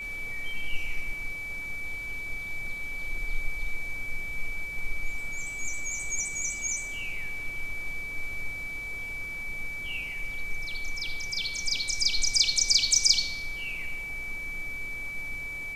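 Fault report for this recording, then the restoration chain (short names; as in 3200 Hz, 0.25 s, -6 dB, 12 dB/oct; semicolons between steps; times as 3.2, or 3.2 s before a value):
tone 2300 Hz -34 dBFS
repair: notch 2300 Hz, Q 30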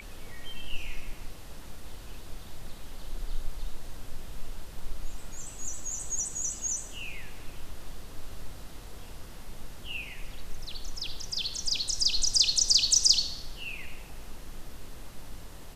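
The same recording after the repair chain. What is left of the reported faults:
none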